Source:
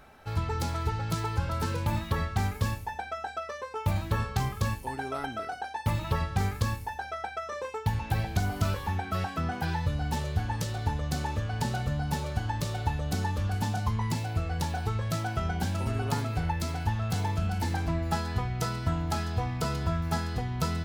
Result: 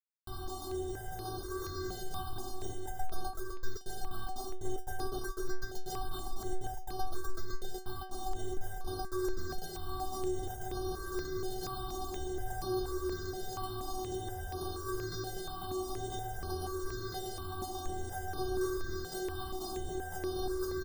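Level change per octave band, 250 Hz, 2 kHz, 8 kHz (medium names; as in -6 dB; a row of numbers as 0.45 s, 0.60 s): -6.5 dB, -10.0 dB, -3.0 dB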